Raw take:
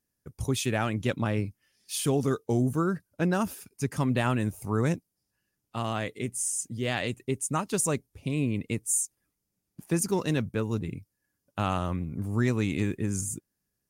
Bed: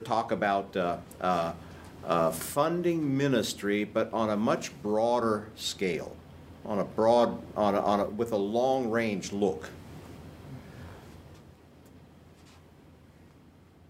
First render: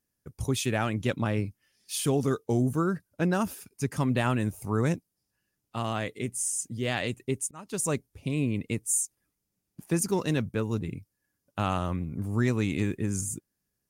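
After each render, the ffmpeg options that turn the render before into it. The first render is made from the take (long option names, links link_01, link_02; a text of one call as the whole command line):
ffmpeg -i in.wav -filter_complex "[0:a]asplit=2[link_01][link_02];[link_01]atrim=end=7.51,asetpts=PTS-STARTPTS,afade=type=out:start_time=7.506:duration=0.004:curve=hsin[link_03];[link_02]atrim=start=7.51,asetpts=PTS-STARTPTS,afade=type=in:duration=0.42[link_04];[link_03][link_04]concat=n=2:v=0:a=1" out.wav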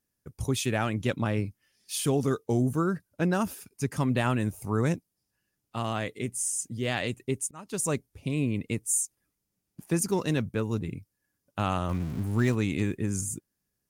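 ffmpeg -i in.wav -filter_complex "[0:a]asettb=1/sr,asplit=3[link_01][link_02][link_03];[link_01]atrim=end=11.894[link_04];[link_02]atrim=start=11.89:end=12.55,asetpts=PTS-STARTPTS,afade=type=in:duration=0.004:curve=qsin,afade=type=out:start_time=0.656:duration=0.004:curve=qsin,aeval=exprs='val(0)+0.5*0.0141*sgn(val(0))':channel_layout=same[link_05];[link_03]atrim=start=12.546[link_06];[link_04][link_05]acrossfade=duration=0.004:curve1=hsin:curve2=qsin[link_07];[link_07][link_06]acrossfade=duration=0.004:curve1=qsin:curve2=hsin" out.wav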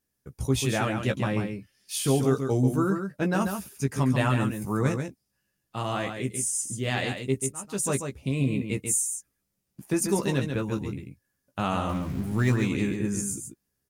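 ffmpeg -i in.wav -filter_complex "[0:a]asplit=2[link_01][link_02];[link_02]adelay=15,volume=-5dB[link_03];[link_01][link_03]amix=inputs=2:normalize=0,aecho=1:1:139:0.473" out.wav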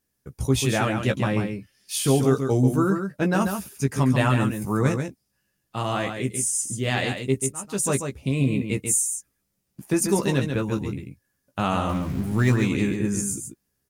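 ffmpeg -i in.wav -af "volume=3.5dB" out.wav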